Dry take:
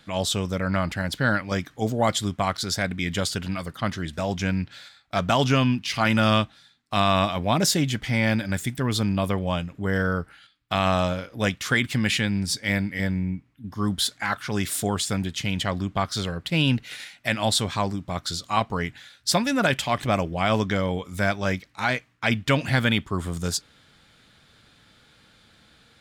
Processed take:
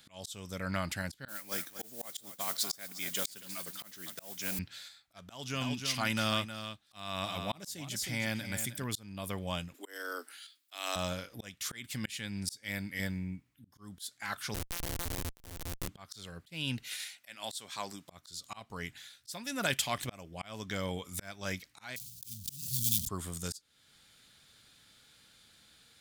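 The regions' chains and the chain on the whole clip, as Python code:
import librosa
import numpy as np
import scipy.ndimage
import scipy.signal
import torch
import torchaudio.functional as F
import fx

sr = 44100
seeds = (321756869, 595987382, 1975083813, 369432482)

y = fx.chain(x, sr, fx.highpass(hz=230.0, slope=12),
    fx.mod_noise(seeds[0], snr_db=12),
    fx.echo_crushed(ms=240, feedback_pct=35, bits=7, wet_db=-13.0), at=(1.28, 4.59))
y = fx.chain(y, sr, fx.highpass(hz=44.0, slope=12),
    fx.echo_single(ms=314, db=-10.5), at=(5.21, 8.84))
y = fx.chain(y, sr, fx.steep_highpass(hz=240.0, slope=96),
    fx.high_shelf(hz=3000.0, db=11.0), at=(9.74, 10.96))
y = fx.chain(y, sr, fx.sample_sort(block=256),
    fx.schmitt(flips_db=-22.0), at=(14.54, 15.88))
y = fx.chain(y, sr, fx.highpass(hz=140.0, slope=12),
    fx.low_shelf(hz=320.0, db=-10.5), at=(16.88, 18.1))
y = fx.chain(y, sr, fx.block_float(bits=3),
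    fx.cheby2_bandstop(low_hz=550.0, high_hz=1400.0, order=4, stop_db=70),
    fx.sustainer(db_per_s=48.0), at=(21.96, 23.09))
y = scipy.signal.lfilter([1.0, -0.8], [1.0], y)
y = fx.auto_swell(y, sr, attack_ms=436.0)
y = fx.rider(y, sr, range_db=3, speed_s=2.0)
y = F.gain(torch.from_numpy(y), 1.0).numpy()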